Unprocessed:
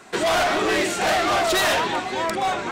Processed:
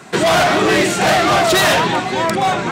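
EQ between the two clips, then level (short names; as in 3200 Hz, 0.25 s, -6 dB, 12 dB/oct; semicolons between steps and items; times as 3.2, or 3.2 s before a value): HPF 52 Hz; bell 150 Hz +11 dB 0.88 oct; +6.5 dB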